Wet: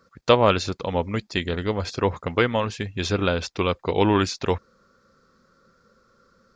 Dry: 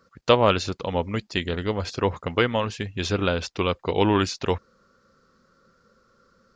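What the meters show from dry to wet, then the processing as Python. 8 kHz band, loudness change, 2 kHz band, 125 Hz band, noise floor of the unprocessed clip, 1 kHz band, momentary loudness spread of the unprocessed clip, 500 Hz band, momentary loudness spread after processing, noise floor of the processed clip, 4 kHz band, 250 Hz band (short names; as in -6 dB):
+1.0 dB, +1.0 dB, +1.0 dB, +1.0 dB, -63 dBFS, +1.0 dB, 8 LU, +1.0 dB, 8 LU, -62 dBFS, 0.0 dB, +1.0 dB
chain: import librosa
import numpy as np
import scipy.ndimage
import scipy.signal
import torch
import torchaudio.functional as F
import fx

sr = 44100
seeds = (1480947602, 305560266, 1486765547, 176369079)

y = fx.notch(x, sr, hz=2900.0, q=15.0)
y = y * 10.0 ** (1.0 / 20.0)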